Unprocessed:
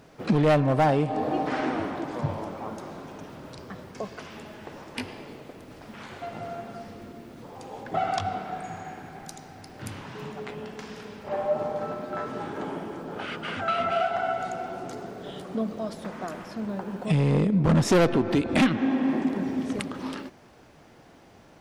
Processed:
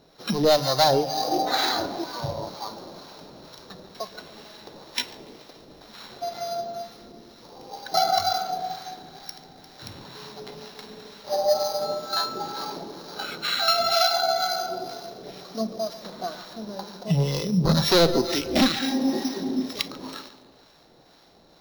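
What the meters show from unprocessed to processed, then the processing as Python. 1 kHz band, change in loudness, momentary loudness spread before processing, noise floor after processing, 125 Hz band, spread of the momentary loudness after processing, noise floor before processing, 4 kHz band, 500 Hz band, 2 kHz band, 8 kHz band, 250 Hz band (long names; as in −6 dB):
+3.0 dB, +3.0 dB, 20 LU, −55 dBFS, −2.5 dB, 22 LU, −53 dBFS, +14.5 dB, +2.0 dB, +1.0 dB, +8.5 dB, −2.0 dB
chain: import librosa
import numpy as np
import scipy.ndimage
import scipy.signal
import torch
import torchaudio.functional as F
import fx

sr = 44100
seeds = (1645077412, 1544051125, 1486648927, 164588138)

p1 = np.r_[np.sort(x[:len(x) // 8 * 8].reshape(-1, 8), axis=1).ravel(), x[len(x) // 8 * 8:]]
p2 = fx.graphic_eq_15(p1, sr, hz=(100, 250, 10000), db=(-10, -4, -7))
p3 = p2 + fx.echo_feedback(p2, sr, ms=143, feedback_pct=53, wet_db=-12.5, dry=0)
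p4 = fx.harmonic_tremolo(p3, sr, hz=2.1, depth_pct=50, crossover_hz=790.0)
p5 = fx.noise_reduce_blind(p4, sr, reduce_db=9)
p6 = fx.rider(p5, sr, range_db=3, speed_s=0.5)
p7 = p5 + (p6 * 10.0 ** (2.5 / 20.0))
p8 = 10.0 ** (-8.0 / 20.0) * np.tanh(p7 / 10.0 ** (-8.0 / 20.0))
p9 = fx.peak_eq(p8, sr, hz=4000.0, db=13.5, octaves=0.27)
y = fx.hum_notches(p9, sr, base_hz=50, count=4)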